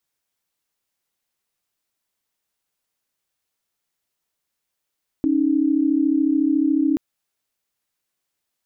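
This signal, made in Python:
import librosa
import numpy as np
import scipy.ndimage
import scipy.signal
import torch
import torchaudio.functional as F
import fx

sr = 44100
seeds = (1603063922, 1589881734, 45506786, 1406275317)

y = fx.chord(sr, length_s=1.73, notes=(61, 63), wave='sine', level_db=-18.5)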